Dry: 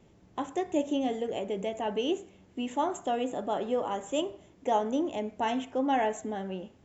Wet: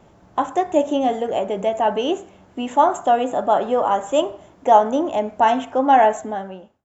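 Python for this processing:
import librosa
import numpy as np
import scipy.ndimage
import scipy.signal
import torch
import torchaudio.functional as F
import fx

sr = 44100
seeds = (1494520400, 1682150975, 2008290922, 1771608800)

y = fx.fade_out_tail(x, sr, length_s=0.73)
y = fx.band_shelf(y, sr, hz=960.0, db=8.0, octaves=1.7)
y = y * librosa.db_to_amplitude(7.0)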